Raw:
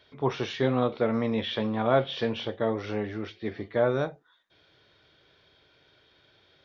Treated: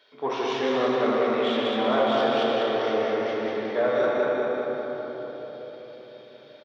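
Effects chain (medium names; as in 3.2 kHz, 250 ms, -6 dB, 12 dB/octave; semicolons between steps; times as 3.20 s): feedback delay 196 ms, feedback 56%, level -4 dB; reverberation RT60 4.4 s, pre-delay 4 ms, DRR -4 dB; in parallel at -3.5 dB: saturation -20 dBFS, distortion -10 dB; on the sum: high-pass 350 Hz 12 dB/octave; trim -4.5 dB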